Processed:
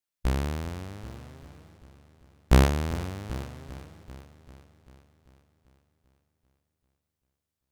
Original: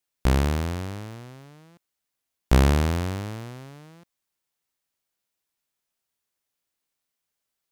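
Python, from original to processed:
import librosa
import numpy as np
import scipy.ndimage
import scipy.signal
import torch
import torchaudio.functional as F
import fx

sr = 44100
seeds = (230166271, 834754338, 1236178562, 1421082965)

y = fx.noise_reduce_blind(x, sr, reduce_db=7)
y = fx.echo_heads(y, sr, ms=392, heads='first and second', feedback_pct=44, wet_db=-19)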